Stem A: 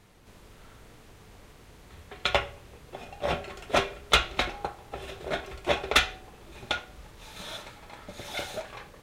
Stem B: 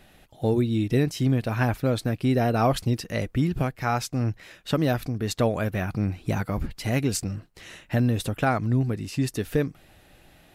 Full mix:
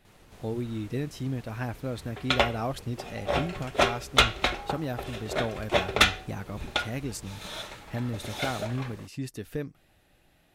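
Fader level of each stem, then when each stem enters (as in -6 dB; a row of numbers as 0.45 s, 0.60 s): +1.5 dB, -9.5 dB; 0.05 s, 0.00 s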